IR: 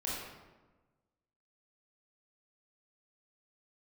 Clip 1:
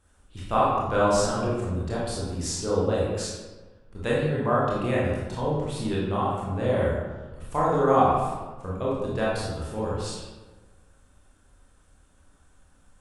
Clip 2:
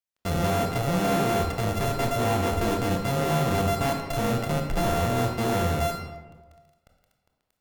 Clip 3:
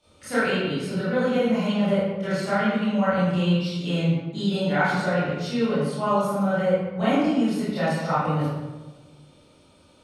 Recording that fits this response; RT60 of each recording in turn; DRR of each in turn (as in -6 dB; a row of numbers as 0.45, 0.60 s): 1; 1.2, 1.2, 1.2 s; -6.5, 2.5, -13.5 dB